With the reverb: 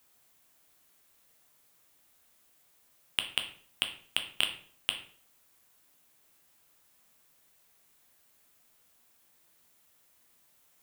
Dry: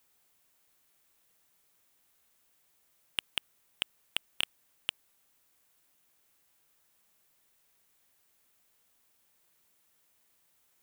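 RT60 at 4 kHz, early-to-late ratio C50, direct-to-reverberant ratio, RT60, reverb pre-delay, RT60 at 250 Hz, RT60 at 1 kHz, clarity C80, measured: 0.40 s, 10.0 dB, 4.5 dB, 0.50 s, 8 ms, 0.60 s, 0.50 s, 13.5 dB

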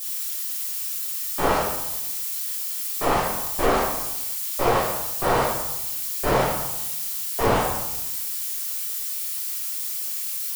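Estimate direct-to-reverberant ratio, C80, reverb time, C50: −9.5 dB, 4.0 dB, 0.95 s, 1.0 dB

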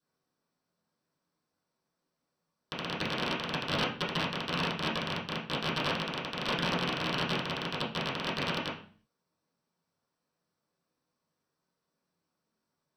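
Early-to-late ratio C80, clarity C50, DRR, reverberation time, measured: 11.5 dB, 7.0 dB, −11.0 dB, 0.45 s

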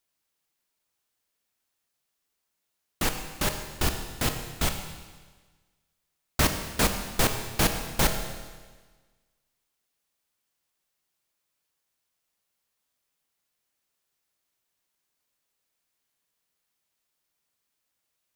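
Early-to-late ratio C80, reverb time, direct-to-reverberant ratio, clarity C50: 8.5 dB, 1.4 s, 5.5 dB, 7.0 dB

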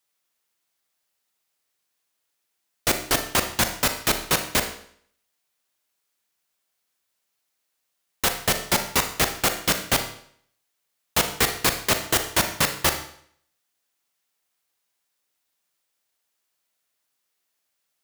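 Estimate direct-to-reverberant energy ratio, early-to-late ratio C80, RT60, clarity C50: 6.5 dB, 12.5 dB, 0.60 s, 9.0 dB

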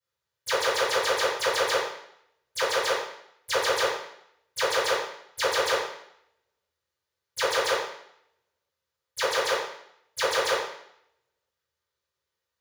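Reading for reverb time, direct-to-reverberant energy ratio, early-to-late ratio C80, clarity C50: 0.70 s, −18.5 dB, 6.0 dB, 2.0 dB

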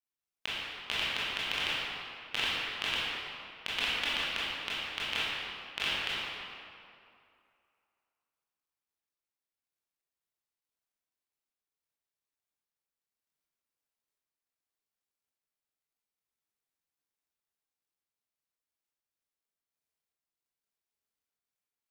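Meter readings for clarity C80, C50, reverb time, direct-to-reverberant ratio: −2.5 dB, −4.5 dB, 2.5 s, −10.0 dB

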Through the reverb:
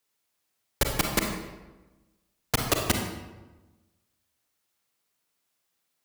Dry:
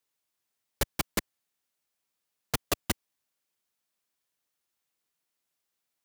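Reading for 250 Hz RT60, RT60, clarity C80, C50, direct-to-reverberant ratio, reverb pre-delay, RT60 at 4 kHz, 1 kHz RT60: 1.4 s, 1.2 s, 6.0 dB, 3.5 dB, 2.0 dB, 35 ms, 0.75 s, 1.1 s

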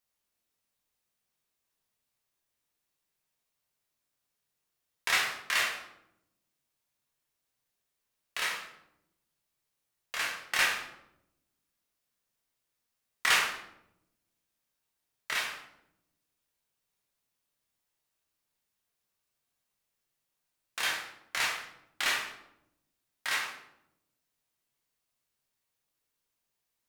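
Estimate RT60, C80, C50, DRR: 0.80 s, 8.5 dB, 5.0 dB, −1.5 dB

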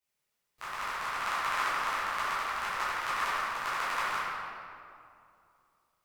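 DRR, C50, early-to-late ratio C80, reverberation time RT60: −12.5 dB, −4.0 dB, −1.5 dB, 2.5 s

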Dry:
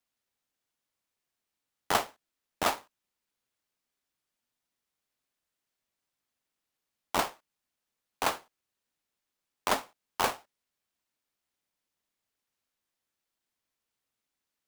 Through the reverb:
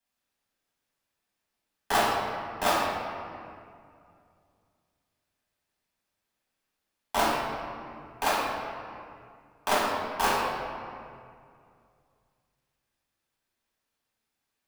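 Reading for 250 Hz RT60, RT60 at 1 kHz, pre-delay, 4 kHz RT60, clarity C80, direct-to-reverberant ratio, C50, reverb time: 2.8 s, 2.2 s, 4 ms, 1.4 s, 1.0 dB, −7.5 dB, −1.0 dB, 2.3 s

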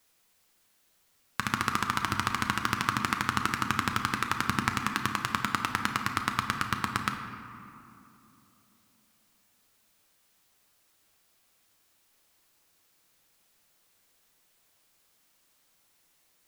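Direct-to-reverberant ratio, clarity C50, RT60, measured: 4.0 dB, 6.5 dB, 2.8 s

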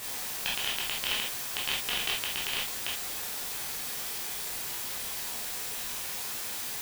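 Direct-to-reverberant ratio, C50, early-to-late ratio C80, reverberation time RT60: −5.0 dB, 4.5 dB, 14.5 dB, non-exponential decay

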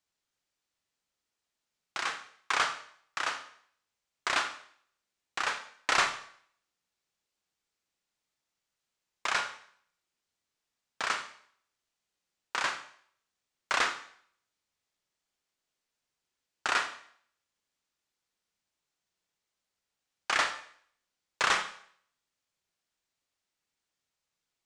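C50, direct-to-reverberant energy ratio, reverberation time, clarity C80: 10.5 dB, 7.5 dB, 0.60 s, 13.5 dB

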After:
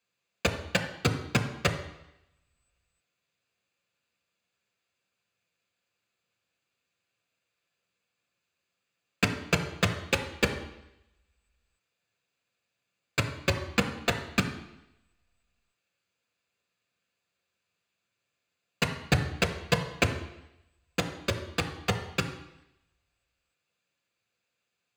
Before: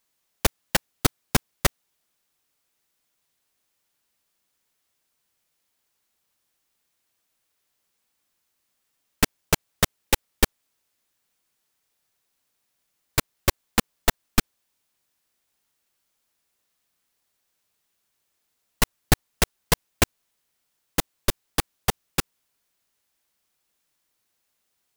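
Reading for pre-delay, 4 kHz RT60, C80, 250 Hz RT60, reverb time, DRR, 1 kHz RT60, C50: 3 ms, 0.90 s, 12.0 dB, 0.85 s, 0.85 s, 5.0 dB, 0.85 s, 10.0 dB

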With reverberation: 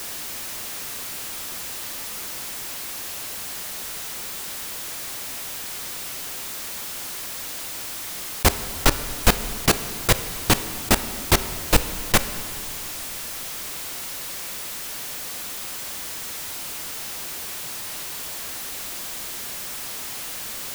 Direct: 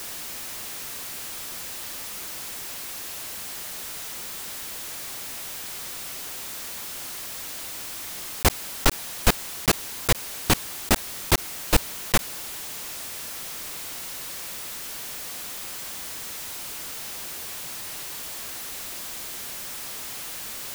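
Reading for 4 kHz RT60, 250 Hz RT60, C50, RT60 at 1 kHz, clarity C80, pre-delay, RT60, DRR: 1.5 s, 3.0 s, 12.5 dB, 2.3 s, 13.5 dB, 11 ms, 2.5 s, 11.0 dB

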